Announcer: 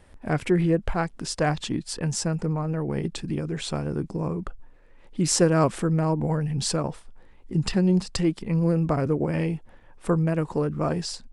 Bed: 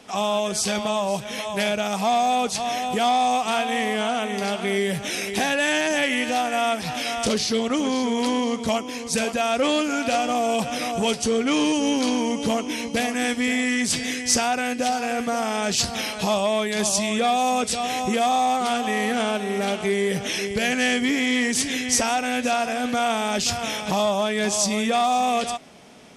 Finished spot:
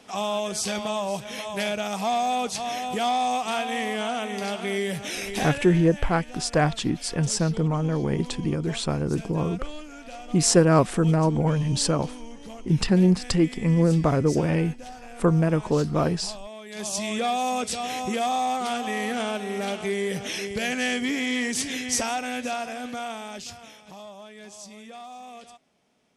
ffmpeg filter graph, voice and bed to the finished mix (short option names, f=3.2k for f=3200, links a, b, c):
-filter_complex "[0:a]adelay=5150,volume=2.5dB[a];[1:a]volume=10dB,afade=t=out:st=5.38:d=0.28:silence=0.188365,afade=t=in:st=16.63:d=0.46:silence=0.199526,afade=t=out:st=22:d=1.76:silence=0.149624[b];[a][b]amix=inputs=2:normalize=0"